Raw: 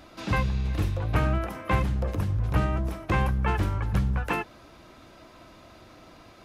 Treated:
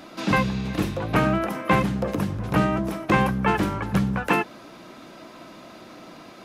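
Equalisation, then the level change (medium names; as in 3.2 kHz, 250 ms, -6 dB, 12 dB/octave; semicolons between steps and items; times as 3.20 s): resonant low shelf 120 Hz -13.5 dB, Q 1.5; +6.5 dB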